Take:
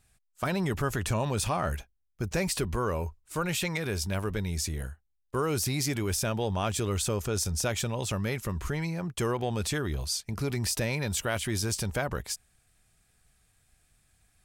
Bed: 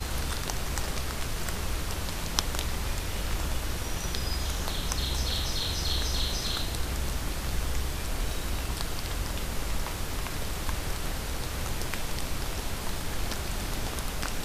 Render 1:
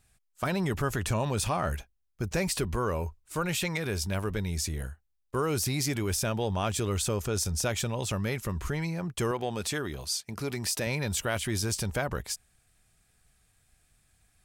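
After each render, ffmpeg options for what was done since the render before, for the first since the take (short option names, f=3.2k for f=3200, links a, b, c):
-filter_complex "[0:a]asettb=1/sr,asplit=3[a][b][c];[a]atrim=end=9.314[d];[b]atrim=start=9.31:end=10.87,asetpts=PTS-STARTPTS,afade=t=in:d=0.004:c=qsin,afade=t=out:st=1.556:d=0.004:c=qsin,highpass=f=210:p=1[e];[c]atrim=start=10.866[f];[d][e]acrossfade=d=0.004:c1=hsin:c2=qsin[g];[g][f]acrossfade=d=0.004:c1=qsin:c2=hsin"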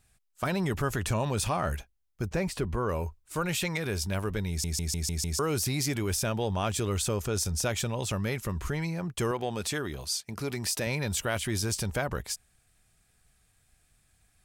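-filter_complex "[0:a]asettb=1/sr,asplit=3[a][b][c];[a]atrim=end=2.274[d];[b]atrim=start=2.27:end=2.89,asetpts=PTS-STARTPTS,afade=t=in:d=0.004:c=qsin,afade=t=out:st=0.616:d=0.004:c=qsin,highshelf=f=3k:g=-10.5[e];[c]atrim=start=2.886[f];[d][e]acrossfade=d=0.004:c1=hsin:c2=qsin[g];[g][f]acrossfade=d=0.004:c1=qsin:c2=hsin,asplit=7[h][i][j][k][l][m][n];[h]atrim=end=4.642[o];[i]atrim=start=4.488:end=4.642[p];[j]atrim=start=4.488:end=4.642[q];[k]atrim=start=4.488:end=4.642[r];[l]atrim=start=4.488:end=4.642[s];[m]atrim=start=4.488:end=4.642[t];[n]atrim=start=5.388[u];[o][p]acrossfade=d=0.004:c1=hsin:c2=hsin[v];[v][q]acrossfade=d=0.004:c1=hsin:c2=hsin[w];[w][r]acrossfade=d=0.004:c1=hsin:c2=hsin[x];[x][s]acrossfade=d=0.004:c1=hsin:c2=hsin[y];[y][t]acrossfade=d=0.004:c1=hsin:c2=hsin[z];[z][u]acrossfade=d=0.004:c1=hsin:c2=hsin"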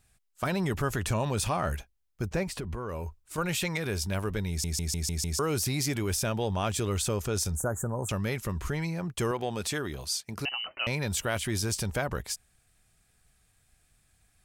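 -filter_complex "[0:a]asettb=1/sr,asplit=3[a][b][c];[a]atrim=end=2.434[d];[b]atrim=start=2.43:end=3.38,asetpts=PTS-STARTPTS,afade=t=in:d=0.004:c=qsin,afade=t=out:st=0.946:d=0.004:c=qsin,acompressor=threshold=-31dB:ratio=6:attack=3.2:release=140:knee=1:detection=peak[e];[c]atrim=start=3.376[f];[d][e]acrossfade=d=0.004:c1=hsin:c2=qsin[g];[g][f]acrossfade=d=0.004:c1=qsin:c2=hsin,asettb=1/sr,asplit=3[h][i][j];[h]atrim=end=7.554[k];[i]atrim=start=7.55:end=8.09,asetpts=PTS-STARTPTS,afade=t=in:d=0.004:c=qsin,afade=t=out:st=0.536:d=0.004:c=qsin,asuperstop=centerf=3400:order=12:qfactor=0.62[l];[j]atrim=start=8.086[m];[k][l]acrossfade=d=0.004:c1=hsin:c2=qsin[n];[n][m]acrossfade=d=0.004:c1=qsin:c2=hsin,asettb=1/sr,asplit=3[o][p][q];[o]atrim=end=10.454[r];[p]atrim=start=10.45:end=10.87,asetpts=PTS-STARTPTS,afade=t=in:d=0.004:c=qsin,afade=t=out:st=0.416:d=0.004:c=qsin,lowpass=f=2.6k:t=q:w=0.5098,lowpass=f=2.6k:t=q:w=0.6013,lowpass=f=2.6k:t=q:w=0.9,lowpass=f=2.6k:t=q:w=2.563,afreqshift=-3100[s];[q]atrim=start=10.866[t];[r][s]acrossfade=d=0.004:c1=hsin:c2=qsin[u];[u][t]acrossfade=d=0.004:c1=qsin:c2=hsin"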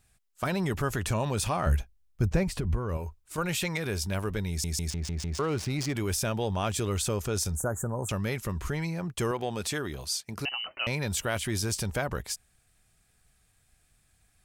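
-filter_complex "[0:a]asettb=1/sr,asplit=3[a][b][c];[a]atrim=end=1.664[d];[b]atrim=start=1.66:end=2.97,asetpts=PTS-STARTPTS,afade=t=in:d=0.004:c=qsin,afade=t=out:st=1.306:d=0.004:c=qsin,lowshelf=f=170:g=11.5[e];[c]atrim=start=2.966[f];[d][e]acrossfade=d=0.004:c1=hsin:c2=qsin[g];[g][f]acrossfade=d=0.004:c1=qsin:c2=hsin,asettb=1/sr,asplit=3[h][i][j];[h]atrim=end=4.904[k];[i]atrim=start=4.9:end=5.95,asetpts=PTS-STARTPTS,afade=t=in:d=0.004:c=qsin,afade=t=out:st=1.046:d=0.004:c=qsin,adynamicsmooth=sensitivity=6:basefreq=1.4k[l];[j]atrim=start=5.946[m];[k][l]acrossfade=d=0.004:c1=hsin:c2=qsin[n];[n][m]acrossfade=d=0.004:c1=qsin:c2=hsin"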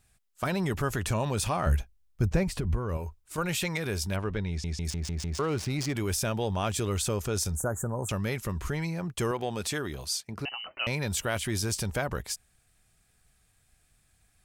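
-filter_complex "[0:a]asettb=1/sr,asplit=3[a][b][c];[a]atrim=end=4.164[d];[b]atrim=start=4.16:end=4.85,asetpts=PTS-STARTPTS,afade=t=in:d=0.004:c=qsin,afade=t=out:st=0.686:d=0.004:c=qsin,lowpass=3.9k[e];[c]atrim=start=4.846[f];[d][e]acrossfade=d=0.004:c1=hsin:c2=qsin[g];[g][f]acrossfade=d=0.004:c1=qsin:c2=hsin,asettb=1/sr,asplit=3[h][i][j];[h]atrim=end=10.274[k];[i]atrim=start=10.27:end=10.78,asetpts=PTS-STARTPTS,afade=t=in:d=0.004:c=qsin,afade=t=out:st=0.506:d=0.004:c=qsin,equalizer=f=12k:t=o:w=2.4:g=-12[l];[j]atrim=start=10.776[m];[k][l]acrossfade=d=0.004:c1=hsin:c2=qsin[n];[n][m]acrossfade=d=0.004:c1=qsin:c2=hsin"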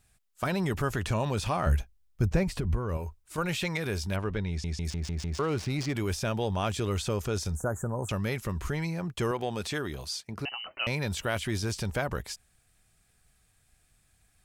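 -filter_complex "[0:a]acrossover=split=5400[a][b];[b]acompressor=threshold=-43dB:ratio=4:attack=1:release=60[c];[a][c]amix=inputs=2:normalize=0"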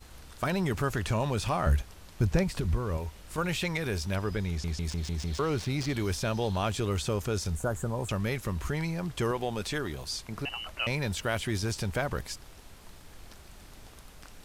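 -filter_complex "[1:a]volume=-18dB[a];[0:a][a]amix=inputs=2:normalize=0"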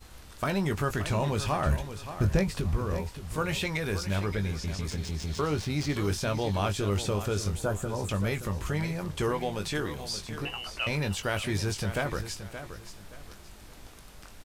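-filter_complex "[0:a]asplit=2[a][b];[b]adelay=20,volume=-8.5dB[c];[a][c]amix=inputs=2:normalize=0,asplit=2[d][e];[e]aecho=0:1:574|1148|1722:0.282|0.0817|0.0237[f];[d][f]amix=inputs=2:normalize=0"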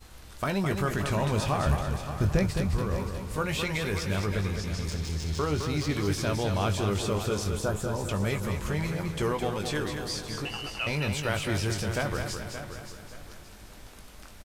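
-af "aecho=1:1:212|424|636|848|1060:0.473|0.208|0.0916|0.0403|0.0177"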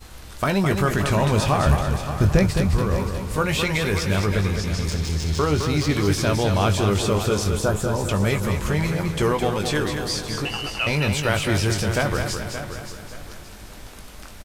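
-af "volume=7.5dB"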